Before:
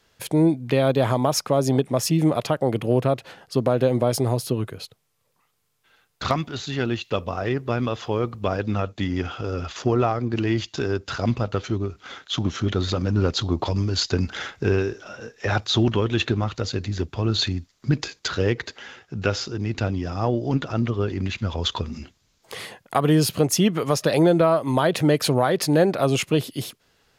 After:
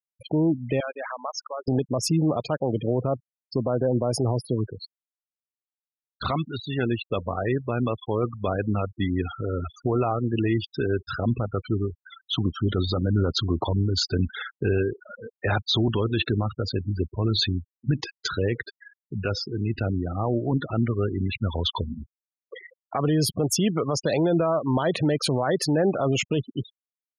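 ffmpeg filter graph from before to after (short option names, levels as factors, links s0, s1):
-filter_complex "[0:a]asettb=1/sr,asplit=3[s0][s1][s2];[s0]atrim=end=0.804[s3];[s1]atrim=start=0.8:end=1.68,asetpts=PTS-STARTPTS,afade=t=in:d=0.004:c=qsin,afade=t=out:st=0.876:d=0.004:c=qsin,bandpass=f=1800:t=q:w=1.6,aemphasis=mode=production:type=50kf[s4];[s2]atrim=start=1.676[s5];[s3][s4]acrossfade=d=0.004:c1=hsin:c2=qsin[s6];[s6][s5]acrossfade=d=0.004:c1=qsin:c2=hsin,afftfilt=real='re*gte(hypot(re,im),0.0562)':imag='im*gte(hypot(re,im),0.0562)':win_size=1024:overlap=0.75,alimiter=limit=0.2:level=0:latency=1:release=19"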